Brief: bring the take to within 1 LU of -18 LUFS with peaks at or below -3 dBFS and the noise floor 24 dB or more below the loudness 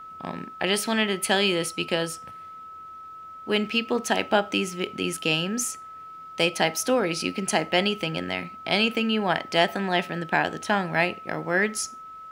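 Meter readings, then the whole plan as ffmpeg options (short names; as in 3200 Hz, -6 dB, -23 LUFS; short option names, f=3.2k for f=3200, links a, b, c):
steady tone 1300 Hz; tone level -39 dBFS; loudness -25.0 LUFS; peak -6.0 dBFS; loudness target -18.0 LUFS
-> -af "bandreject=f=1.3k:w=30"
-af "volume=7dB,alimiter=limit=-3dB:level=0:latency=1"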